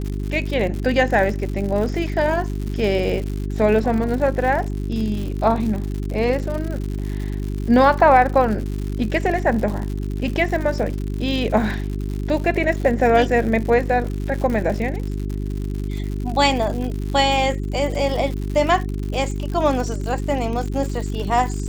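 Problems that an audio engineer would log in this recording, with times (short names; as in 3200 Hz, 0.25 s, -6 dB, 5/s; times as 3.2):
crackle 130/s -27 dBFS
hum 50 Hz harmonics 8 -25 dBFS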